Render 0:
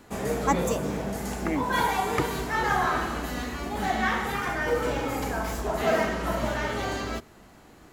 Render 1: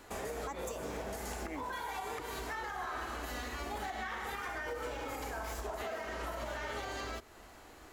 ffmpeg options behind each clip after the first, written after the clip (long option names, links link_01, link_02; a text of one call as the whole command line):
ffmpeg -i in.wav -af "equalizer=frequency=170:width_type=o:width=1.3:gain=-13.5,acompressor=threshold=-30dB:ratio=6,alimiter=level_in=6.5dB:limit=-24dB:level=0:latency=1:release=234,volume=-6.5dB" out.wav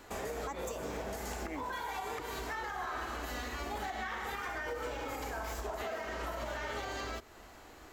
ffmpeg -i in.wav -af "equalizer=frequency=9900:width=7.9:gain=-14,volume=1dB" out.wav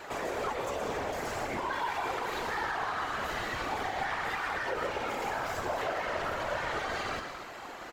ffmpeg -i in.wav -filter_complex "[0:a]asplit=2[link_01][link_02];[link_02]highpass=frequency=720:poles=1,volume=18dB,asoftclip=type=tanh:threshold=-29dB[link_03];[link_01][link_03]amix=inputs=2:normalize=0,lowpass=frequency=2300:poles=1,volume=-6dB,aecho=1:1:119.5|180.8|236.2:0.355|0.251|0.316,afftfilt=real='hypot(re,im)*cos(2*PI*random(0))':imag='hypot(re,im)*sin(2*PI*random(1))':win_size=512:overlap=0.75,volume=7.5dB" out.wav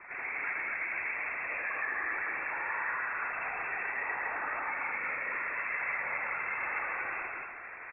ffmpeg -i in.wav -filter_complex "[0:a]asplit=2[link_01][link_02];[link_02]aecho=0:1:81.63|242:0.794|0.891[link_03];[link_01][link_03]amix=inputs=2:normalize=0,lowpass=frequency=2300:width_type=q:width=0.5098,lowpass=frequency=2300:width_type=q:width=0.6013,lowpass=frequency=2300:width_type=q:width=0.9,lowpass=frequency=2300:width_type=q:width=2.563,afreqshift=-2700,volume=-5dB" out.wav